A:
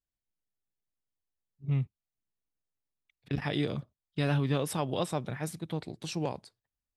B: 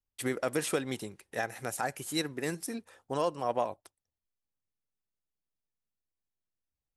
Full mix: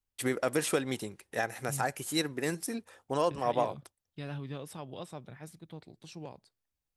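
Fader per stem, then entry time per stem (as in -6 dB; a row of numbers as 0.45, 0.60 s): -11.5, +1.5 dB; 0.00, 0.00 s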